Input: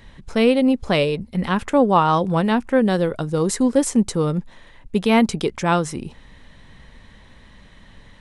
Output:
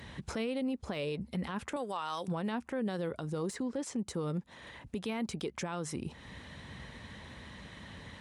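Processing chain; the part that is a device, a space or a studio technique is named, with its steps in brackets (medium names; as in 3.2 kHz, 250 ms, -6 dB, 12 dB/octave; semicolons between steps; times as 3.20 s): 3.55–3.99 s: low-pass 6.1 kHz 12 dB/octave; harmonic-percussive split percussive +3 dB; 1.76–2.28 s: tilt EQ +4.5 dB/octave; podcast mastering chain (high-pass 62 Hz 24 dB/octave; de-esser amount 45%; compression 2.5:1, threshold -36 dBFS, peak gain reduction 18 dB; peak limiter -27 dBFS, peak gain reduction 9 dB; MP3 128 kbps 48 kHz)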